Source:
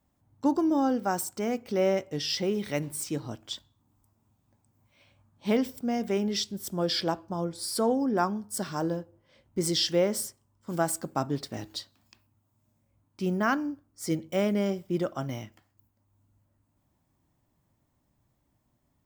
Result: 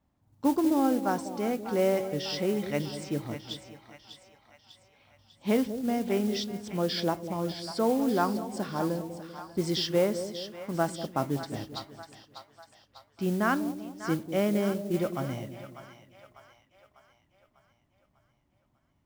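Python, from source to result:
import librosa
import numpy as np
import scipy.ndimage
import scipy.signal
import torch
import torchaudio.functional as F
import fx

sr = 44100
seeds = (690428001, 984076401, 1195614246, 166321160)

y = fx.air_absorb(x, sr, metres=120.0)
y = fx.echo_split(y, sr, split_hz=720.0, low_ms=196, high_ms=597, feedback_pct=52, wet_db=-10.0)
y = fx.mod_noise(y, sr, seeds[0], snr_db=21)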